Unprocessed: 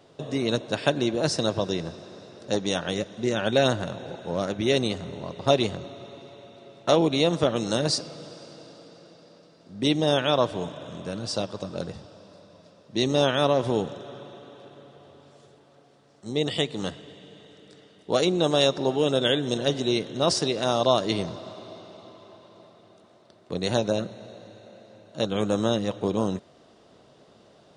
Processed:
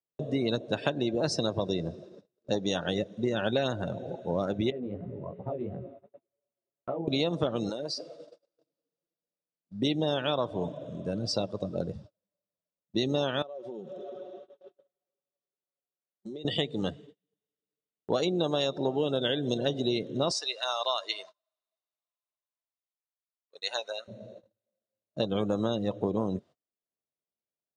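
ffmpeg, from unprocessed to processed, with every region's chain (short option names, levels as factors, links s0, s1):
-filter_complex "[0:a]asettb=1/sr,asplit=3[s0][s1][s2];[s0]atrim=end=4.704[s3];[s1]atrim=start=4.7:end=7.08,asetpts=PTS-STARTPTS,afade=t=in:d=0.004:c=qsin,afade=t=out:st=2.376:d=0.004:c=qsin,lowpass=f=2200:w=0.5412,lowpass=f=2200:w=1.3066,acompressor=threshold=0.0447:ratio=6:attack=3.2:release=140:knee=1:detection=peak,flanger=delay=15.5:depth=5.6:speed=2.7[s4];[s2]atrim=start=7.076[s5];[s3][s4]acrossfade=d=0.004:c1=hsin:c2=qsin[s6];[s6][s5]acrossfade=d=0.004:c1=qsin:c2=hsin,asettb=1/sr,asplit=3[s7][s8][s9];[s7]atrim=end=7.694[s10];[s8]atrim=start=7.69:end=8.58,asetpts=PTS-STARTPTS,afade=t=in:d=0.004:c=qsin,afade=t=out:st=0.886:d=0.004:c=qsin,acompressor=threshold=0.0447:ratio=8:attack=3.2:release=140:knee=1:detection=peak,bass=f=250:g=-11,treble=f=4000:g=-2[s11];[s9]atrim=start=8.576[s12];[s10][s11]acrossfade=d=0.004:c1=hsin:c2=qsin[s13];[s13][s12]acrossfade=d=0.004:c1=qsin:c2=hsin,asettb=1/sr,asplit=3[s14][s15][s16];[s14]atrim=end=13.424[s17];[s15]atrim=start=13.42:end=16.45,asetpts=PTS-STARTPTS,afade=t=in:d=0.004:c=qsin,afade=t=out:st=3.026:d=0.004:c=qsin,highpass=210,lowpass=7400,aecho=1:1:5.4:0.48,atrim=end_sample=133623,acompressor=threshold=0.0178:ratio=16:attack=3.2:release=140:knee=1:detection=peak[s18];[s16]atrim=start=16.446[s19];[s17][s18]acrossfade=d=0.004:c1=hsin:c2=qsin[s20];[s20][s19]acrossfade=d=0.004:c1=qsin:c2=hsin,asettb=1/sr,asplit=3[s21][s22][s23];[s21]atrim=end=20.324[s24];[s22]atrim=start=20.32:end=24.08,asetpts=PTS-STARTPTS,afade=t=in:d=0.004:c=qsin,afade=t=out:st=3.756:d=0.004:c=qsin,highpass=1100,bandreject=f=3400:w=21[s25];[s23]atrim=start=24.076[s26];[s24][s25]acrossfade=d=0.004:c1=hsin:c2=qsin[s27];[s27][s26]acrossfade=d=0.004:c1=qsin:c2=hsin,afftdn=nr=16:nf=-34,agate=range=0.0251:threshold=0.00398:ratio=16:detection=peak,acompressor=threshold=0.0562:ratio=6,volume=1.12"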